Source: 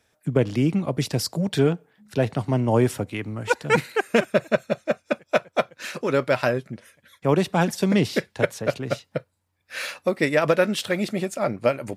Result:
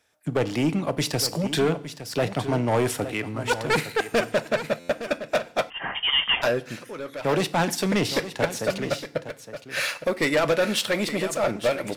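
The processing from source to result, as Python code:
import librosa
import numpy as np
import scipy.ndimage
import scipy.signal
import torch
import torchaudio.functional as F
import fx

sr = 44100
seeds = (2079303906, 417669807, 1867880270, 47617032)

y = fx.low_shelf(x, sr, hz=310.0, db=-9.0)
y = fx.leveller(y, sr, passes=1)
y = 10.0 ** (-18.0 / 20.0) * np.tanh(y / 10.0 ** (-18.0 / 20.0))
y = y + 10.0 ** (-12.0 / 20.0) * np.pad(y, (int(863 * sr / 1000.0), 0))[:len(y)]
y = fx.rev_fdn(y, sr, rt60_s=0.6, lf_ratio=1.35, hf_ratio=1.0, size_ms=20.0, drr_db=14.0)
y = fx.freq_invert(y, sr, carrier_hz=3400, at=(5.7, 6.42))
y = fx.buffer_glitch(y, sr, at_s=(4.79,), block=512, repeats=8)
y = y * librosa.db_to_amplitude(1.5)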